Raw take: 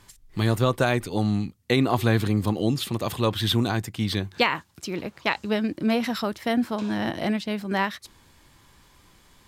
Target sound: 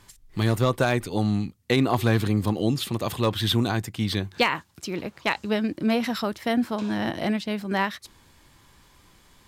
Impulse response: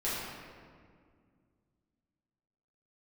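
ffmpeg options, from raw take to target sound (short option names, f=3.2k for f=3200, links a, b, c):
-af "asoftclip=type=hard:threshold=-11dB"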